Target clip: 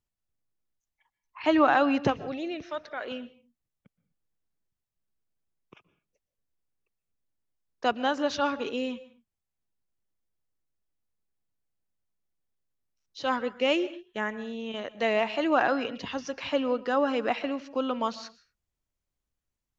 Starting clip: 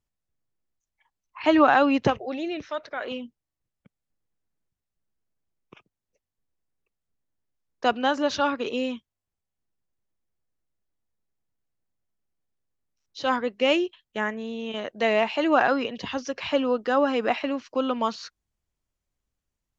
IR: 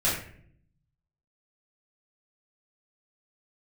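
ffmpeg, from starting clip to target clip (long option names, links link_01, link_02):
-filter_complex "[0:a]asplit=2[link_01][link_02];[1:a]atrim=start_sample=2205,atrim=end_sample=6174,adelay=117[link_03];[link_02][link_03]afir=irnorm=-1:irlink=0,volume=-28.5dB[link_04];[link_01][link_04]amix=inputs=2:normalize=0,volume=-3.5dB"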